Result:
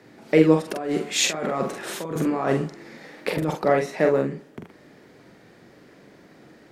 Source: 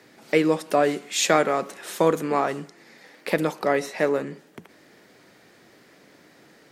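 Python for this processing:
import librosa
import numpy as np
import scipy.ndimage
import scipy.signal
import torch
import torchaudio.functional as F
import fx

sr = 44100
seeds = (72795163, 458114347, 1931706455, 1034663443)

y = fx.tilt_eq(x, sr, slope=-2.0)
y = fx.over_compress(y, sr, threshold_db=-26.0, ratio=-1.0, at=(0.66, 3.53))
y = fx.doubler(y, sr, ms=44.0, db=-4)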